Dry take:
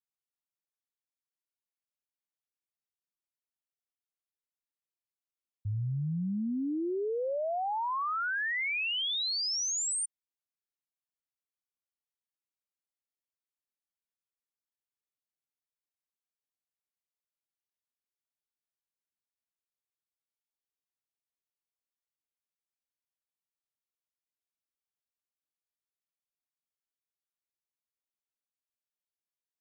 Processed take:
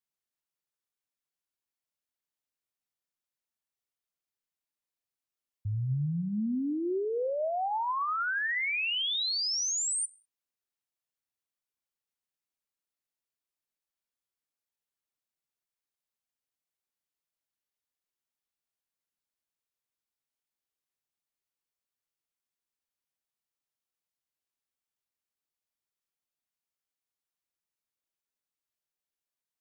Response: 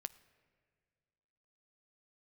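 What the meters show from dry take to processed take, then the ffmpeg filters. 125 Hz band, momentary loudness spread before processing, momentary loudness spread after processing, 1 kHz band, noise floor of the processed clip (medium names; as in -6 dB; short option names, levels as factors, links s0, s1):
+1.5 dB, 5 LU, 5 LU, +1.5 dB, under -85 dBFS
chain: -filter_complex "[1:a]atrim=start_sample=2205,afade=t=out:st=0.25:d=0.01,atrim=end_sample=11466[s0];[0:a][s0]afir=irnorm=-1:irlink=0,volume=1.78"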